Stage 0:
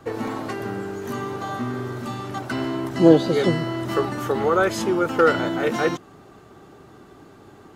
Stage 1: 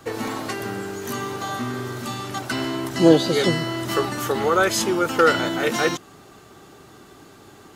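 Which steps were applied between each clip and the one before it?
high shelf 2300 Hz +11.5 dB; gain -1 dB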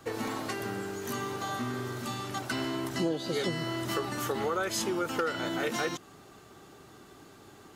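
compressor 6:1, threshold -21 dBFS, peak gain reduction 13 dB; gain -6 dB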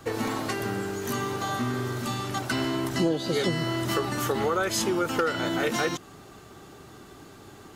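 low shelf 120 Hz +5.5 dB; gain +4.5 dB

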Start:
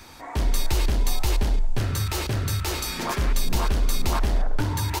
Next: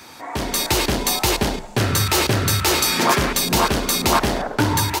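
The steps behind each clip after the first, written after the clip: Bessel high-pass 170 Hz, order 2; AGC gain up to 6.5 dB; gain +5 dB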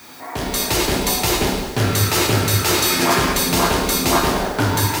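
added noise violet -47 dBFS; plate-style reverb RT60 1.3 s, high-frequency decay 0.95×, DRR -0.5 dB; gain -2 dB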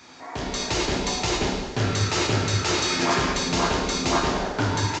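downsampling 16000 Hz; gain -5.5 dB

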